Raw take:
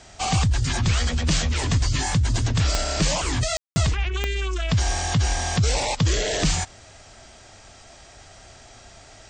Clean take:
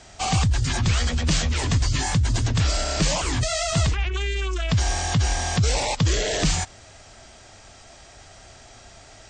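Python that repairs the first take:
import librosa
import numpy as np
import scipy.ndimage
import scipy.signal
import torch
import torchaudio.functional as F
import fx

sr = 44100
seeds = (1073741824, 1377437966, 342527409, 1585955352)

y = fx.fix_declick_ar(x, sr, threshold=10.0)
y = fx.fix_ambience(y, sr, seeds[0], print_start_s=7.35, print_end_s=7.85, start_s=3.57, end_s=3.76)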